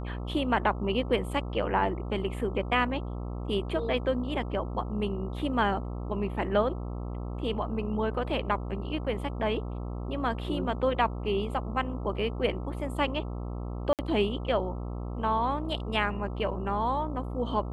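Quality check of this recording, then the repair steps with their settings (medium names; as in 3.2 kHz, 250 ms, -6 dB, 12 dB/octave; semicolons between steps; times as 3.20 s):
buzz 60 Hz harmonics 22 -35 dBFS
13.93–13.99 s: dropout 58 ms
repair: de-hum 60 Hz, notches 22; interpolate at 13.93 s, 58 ms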